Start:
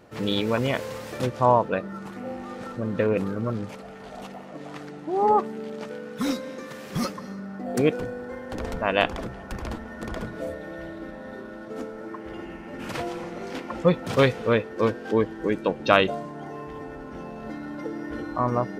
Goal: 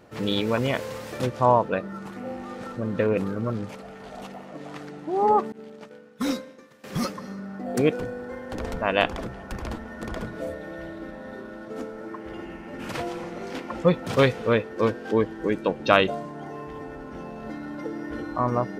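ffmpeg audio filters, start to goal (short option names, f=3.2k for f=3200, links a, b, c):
-filter_complex "[0:a]asettb=1/sr,asplit=3[a][b][c];[a]atrim=end=5.524[d];[b]atrim=start=5.52:end=6.84,asetpts=PTS-STARTPTS,afade=t=in:d=0.004:c=qsin,afade=t=out:st=1.316:d=0.004:c=qsin,agate=range=-33dB:threshold=-27dB:ratio=3:detection=peak[e];[c]atrim=start=6.836[f];[d][e]acrossfade=d=0.004:c1=hsin:c2=qsin[g];[g][f]acrossfade=d=0.004:c1=qsin:c2=hsin"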